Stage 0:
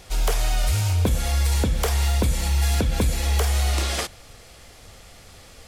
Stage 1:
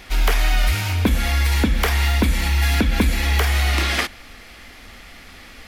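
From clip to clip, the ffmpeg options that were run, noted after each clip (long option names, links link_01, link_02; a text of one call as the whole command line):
ffmpeg -i in.wav -af "equalizer=frequency=125:width_type=o:width=1:gain=-12,equalizer=frequency=250:width_type=o:width=1:gain=8,equalizer=frequency=500:width_type=o:width=1:gain=-7,equalizer=frequency=2000:width_type=o:width=1:gain=7,equalizer=frequency=8000:width_type=o:width=1:gain=-9,volume=5dB" out.wav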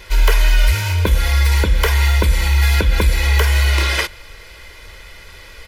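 ffmpeg -i in.wav -af "aecho=1:1:2:0.89" out.wav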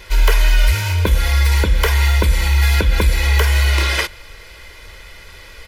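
ffmpeg -i in.wav -af anull out.wav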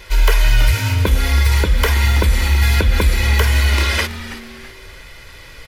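ffmpeg -i in.wav -filter_complex "[0:a]asplit=4[link_01][link_02][link_03][link_04];[link_02]adelay=327,afreqshift=-150,volume=-14dB[link_05];[link_03]adelay=654,afreqshift=-300,volume=-23.1dB[link_06];[link_04]adelay=981,afreqshift=-450,volume=-32.2dB[link_07];[link_01][link_05][link_06][link_07]amix=inputs=4:normalize=0" out.wav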